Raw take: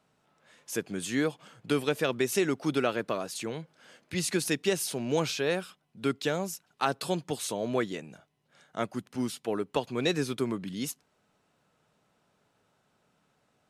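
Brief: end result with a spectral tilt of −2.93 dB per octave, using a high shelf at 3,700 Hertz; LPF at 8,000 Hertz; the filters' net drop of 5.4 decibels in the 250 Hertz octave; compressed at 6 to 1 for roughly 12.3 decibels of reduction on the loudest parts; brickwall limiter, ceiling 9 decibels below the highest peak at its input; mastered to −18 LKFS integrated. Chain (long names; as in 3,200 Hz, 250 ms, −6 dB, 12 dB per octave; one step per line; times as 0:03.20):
low-pass filter 8,000 Hz
parametric band 250 Hz −7.5 dB
high-shelf EQ 3,700 Hz +6 dB
downward compressor 6 to 1, threshold −37 dBFS
level +24.5 dB
brickwall limiter −5.5 dBFS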